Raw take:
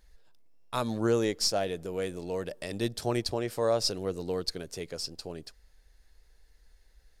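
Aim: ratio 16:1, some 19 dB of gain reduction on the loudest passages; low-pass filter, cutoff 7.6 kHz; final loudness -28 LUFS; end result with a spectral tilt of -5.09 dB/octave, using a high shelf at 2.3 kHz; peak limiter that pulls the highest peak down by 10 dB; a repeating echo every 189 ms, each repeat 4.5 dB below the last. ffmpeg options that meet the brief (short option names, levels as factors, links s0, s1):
-af "lowpass=7600,highshelf=f=2300:g=-6.5,acompressor=threshold=0.00891:ratio=16,alimiter=level_in=4.73:limit=0.0631:level=0:latency=1,volume=0.211,aecho=1:1:189|378|567|756|945|1134|1323|1512|1701:0.596|0.357|0.214|0.129|0.0772|0.0463|0.0278|0.0167|0.01,volume=9.44"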